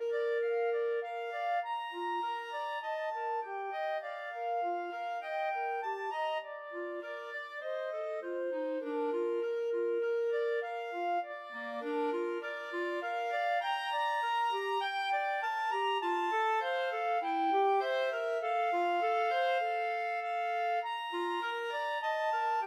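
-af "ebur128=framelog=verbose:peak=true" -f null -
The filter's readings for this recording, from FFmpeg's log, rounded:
Integrated loudness:
  I:         -34.1 LUFS
  Threshold: -44.1 LUFS
Loudness range:
  LRA:         5.6 LU
  Threshold: -54.1 LUFS
  LRA low:   -37.1 LUFS
  LRA high:  -31.5 LUFS
True peak:
  Peak:      -20.2 dBFS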